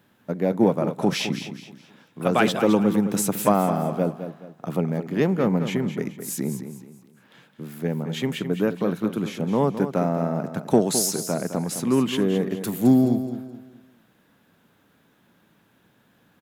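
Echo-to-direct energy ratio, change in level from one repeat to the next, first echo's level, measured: -9.5 dB, -9.5 dB, -10.0 dB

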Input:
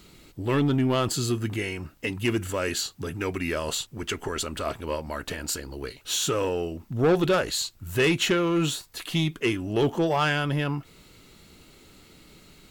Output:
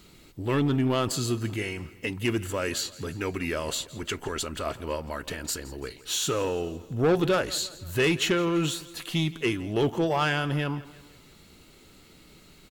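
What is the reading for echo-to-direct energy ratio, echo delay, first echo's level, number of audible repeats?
-17.5 dB, 168 ms, -19.0 dB, 3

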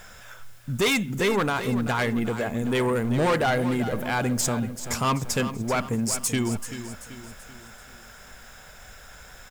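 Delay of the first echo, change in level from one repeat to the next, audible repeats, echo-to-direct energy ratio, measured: 385 ms, -6.5 dB, 4, -10.5 dB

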